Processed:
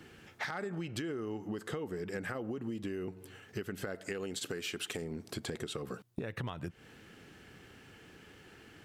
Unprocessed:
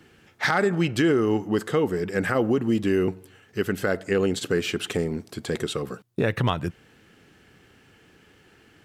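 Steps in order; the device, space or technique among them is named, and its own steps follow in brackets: 3.95–5.02 tilt +1.5 dB/oct; serial compression, peaks first (compressor, threshold -31 dBFS, peak gain reduction 13 dB; compressor 2.5:1, threshold -37 dBFS, peak gain reduction 6.5 dB)

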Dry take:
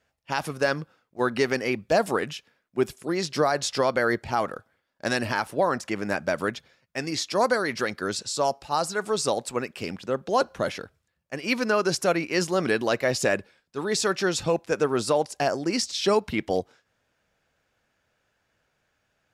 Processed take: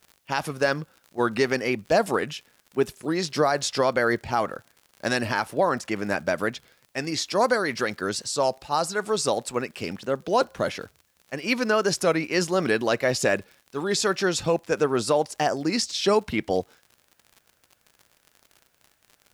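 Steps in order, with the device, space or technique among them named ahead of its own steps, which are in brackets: warped LP (record warp 33 1/3 rpm, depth 100 cents; crackle 64/s -39 dBFS; white noise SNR 45 dB); gain +1 dB

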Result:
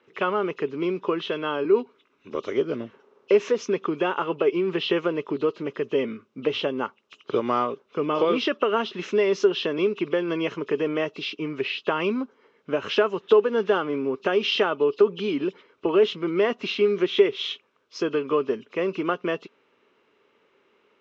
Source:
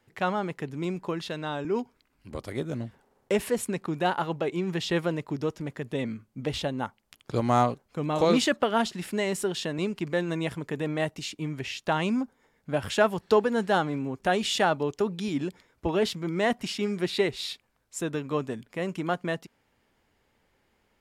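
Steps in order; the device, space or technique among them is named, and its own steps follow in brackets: hearing aid with frequency lowering (nonlinear frequency compression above 2500 Hz 1.5:1; compressor 3:1, threshold -27 dBFS, peak gain reduction 8.5 dB; speaker cabinet 290–5100 Hz, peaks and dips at 410 Hz +9 dB, 760 Hz -9 dB, 1200 Hz +6 dB, 1800 Hz -5 dB, 2800 Hz +4 dB, 4600 Hz -7 dB); gain +6.5 dB

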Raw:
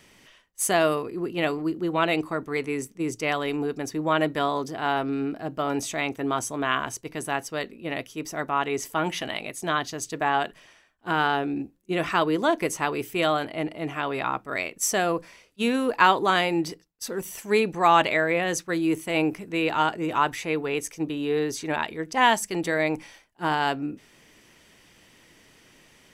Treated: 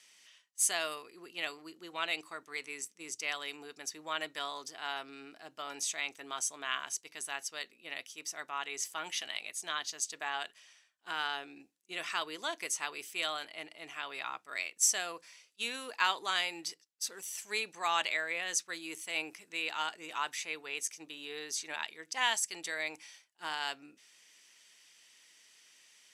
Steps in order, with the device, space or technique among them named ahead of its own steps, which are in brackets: piezo pickup straight into a mixer (LPF 7100 Hz 12 dB/oct; differentiator); gain +3 dB

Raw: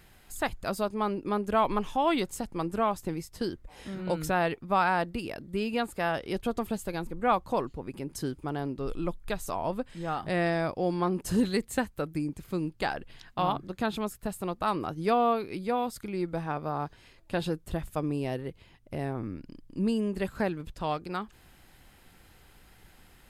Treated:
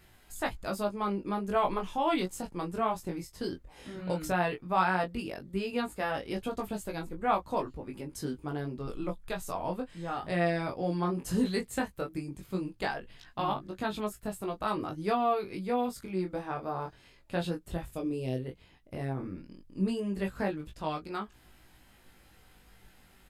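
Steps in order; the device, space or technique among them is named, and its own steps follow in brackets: 17.94–18.46 band shelf 1200 Hz -9 dB; double-tracked vocal (doubler 16 ms -9 dB; chorus 0.14 Hz, delay 19 ms, depth 4.4 ms)

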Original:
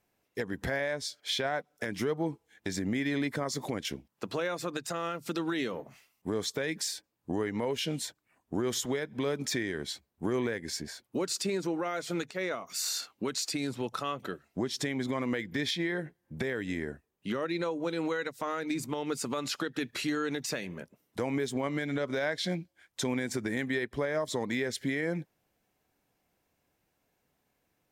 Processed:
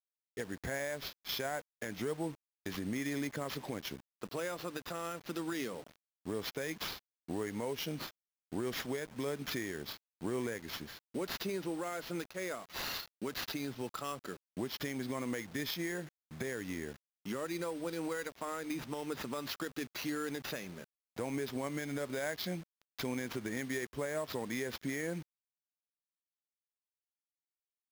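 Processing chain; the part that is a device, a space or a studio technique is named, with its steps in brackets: early 8-bit sampler (sample-rate reducer 8600 Hz, jitter 0%; bit-crush 8-bit); gain -6 dB

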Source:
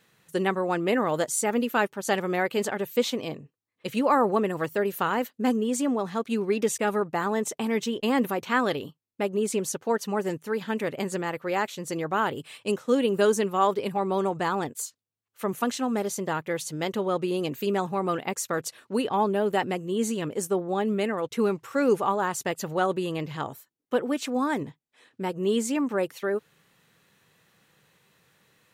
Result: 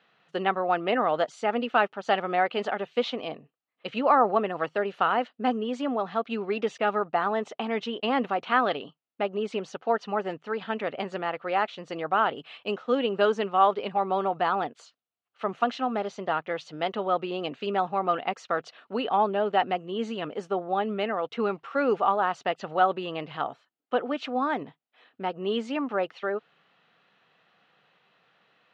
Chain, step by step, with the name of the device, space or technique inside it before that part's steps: kitchen radio (speaker cabinet 210–4200 Hz, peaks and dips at 350 Hz -3 dB, 710 Hz +10 dB, 1300 Hz +7 dB, 2900 Hz +5 dB); gain -2.5 dB

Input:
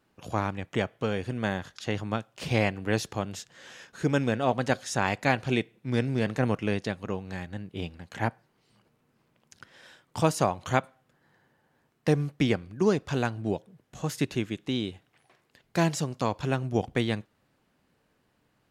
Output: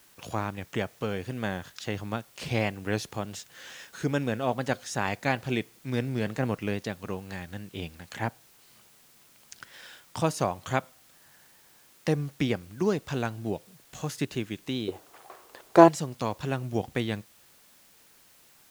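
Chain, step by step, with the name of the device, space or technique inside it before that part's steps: 14.88–15.88 band shelf 640 Hz +15.5 dB 2.5 oct; noise-reduction cassette on a plain deck (mismatched tape noise reduction encoder only; wow and flutter; white noise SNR 28 dB); gain -2.5 dB

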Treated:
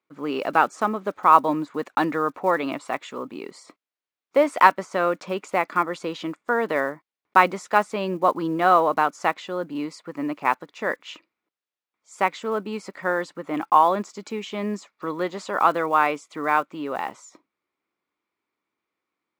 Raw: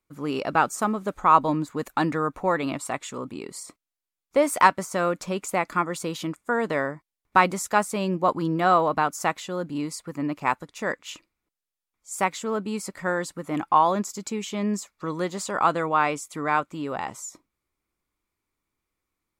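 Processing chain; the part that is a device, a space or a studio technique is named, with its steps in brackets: early digital voice recorder (BPF 260–3600 Hz; block floating point 7-bit); gain +2.5 dB

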